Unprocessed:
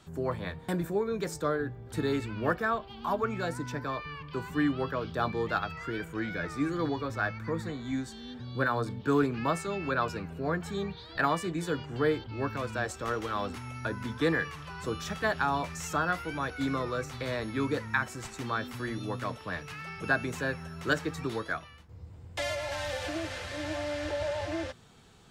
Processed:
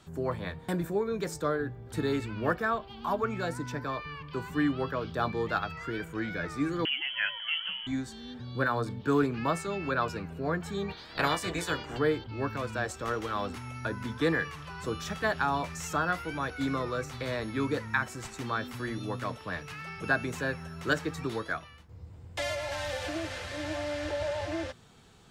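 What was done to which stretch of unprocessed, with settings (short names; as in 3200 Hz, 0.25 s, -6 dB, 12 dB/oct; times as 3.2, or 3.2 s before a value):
6.85–7.87 inverted band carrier 3200 Hz
10.88–11.97 spectral limiter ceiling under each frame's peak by 17 dB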